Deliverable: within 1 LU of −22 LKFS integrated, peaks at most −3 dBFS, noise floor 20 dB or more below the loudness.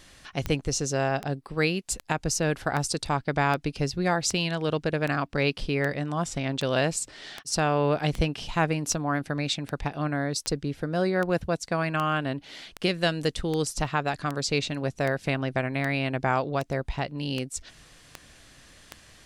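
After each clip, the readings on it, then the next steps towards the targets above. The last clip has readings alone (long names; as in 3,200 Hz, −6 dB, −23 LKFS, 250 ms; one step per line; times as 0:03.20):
number of clicks 25; integrated loudness −27.5 LKFS; sample peak −11.5 dBFS; target loudness −22.0 LKFS
→ click removal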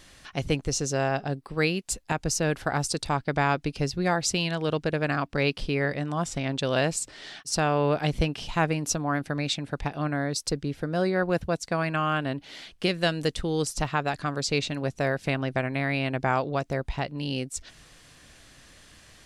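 number of clicks 0; integrated loudness −27.5 LKFS; sample peak −11.5 dBFS; target loudness −22.0 LKFS
→ level +5.5 dB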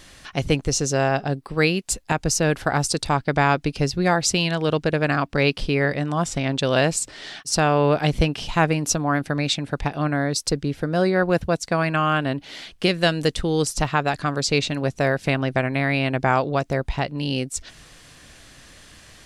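integrated loudness −22.0 LKFS; sample peak −6.0 dBFS; background noise floor −48 dBFS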